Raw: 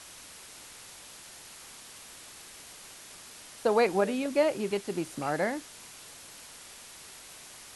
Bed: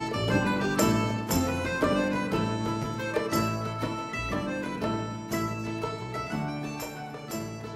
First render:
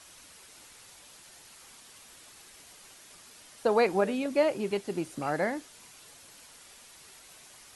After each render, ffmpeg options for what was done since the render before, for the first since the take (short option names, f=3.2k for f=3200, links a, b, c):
-af "afftdn=nr=6:nf=-49"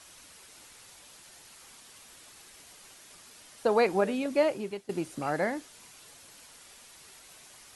-filter_complex "[0:a]asplit=2[a][b];[a]atrim=end=4.89,asetpts=PTS-STARTPTS,afade=t=out:st=4.46:d=0.43:silence=0.149624[c];[b]atrim=start=4.89,asetpts=PTS-STARTPTS,afade=t=in:d=0.004:c=hsin:silence=0.149624[d];[c][d]concat=n=2:v=0:a=1"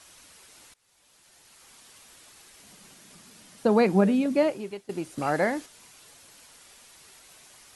-filter_complex "[0:a]asettb=1/sr,asplit=3[a][b][c];[a]atrim=end=2.634[d];[b]atrim=start=2.63:end=4.5,asetpts=PTS-STARTPTS,afade=t=in:d=0.004:c=qsin,afade=t=out:st=1.866:d=0.004:c=qsin,equalizer=f=190:t=o:w=1.1:g=14.5[e];[c]atrim=start=4.496[f];[d][e]acrossfade=d=0.004:c1=hsin:c2=qsin[g];[g][f]acrossfade=d=0.004:c1=qsin:c2=hsin,asplit=4[h][i][j][k];[h]atrim=end=0.74,asetpts=PTS-STARTPTS,afade=t=out:st=0.736:d=0.004:c=hsin:silence=0.0668344[l];[i]atrim=start=0.74:end=5.182,asetpts=PTS-STARTPTS,afade=t=in:d=1.1:silence=0.0668344[m];[j]atrim=start=5.178:end=5.662,asetpts=PTS-STARTPTS,volume=4.5dB[n];[k]atrim=start=5.658[o];[l][m]concat=n=2:v=0:a=1[p];[p][n]acrossfade=d=0.004:c1=hsin:c2=hsin[q];[q][o]acrossfade=d=0.004:c1=hsin:c2=hsin"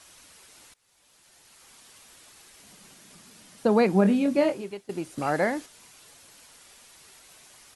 -filter_complex "[0:a]asplit=3[a][b][c];[a]afade=t=out:st=4.04:d=0.02[d];[b]asplit=2[e][f];[f]adelay=25,volume=-6.5dB[g];[e][g]amix=inputs=2:normalize=0,afade=t=in:st=4.04:d=0.02,afade=t=out:st=4.64:d=0.02[h];[c]afade=t=in:st=4.64:d=0.02[i];[d][h][i]amix=inputs=3:normalize=0"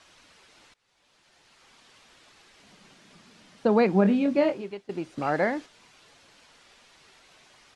-af "lowpass=4.4k,equalizer=f=65:t=o:w=1.6:g=-3.5"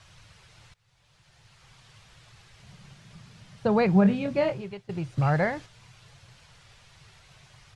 -af "lowshelf=f=180:t=q:w=3:g=13"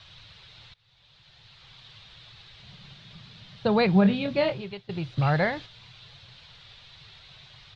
-af "lowpass=f=3.8k:t=q:w=4.3"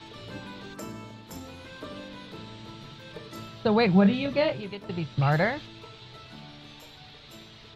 -filter_complex "[1:a]volume=-15.5dB[a];[0:a][a]amix=inputs=2:normalize=0"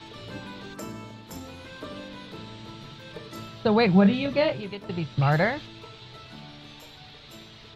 -af "volume=1.5dB"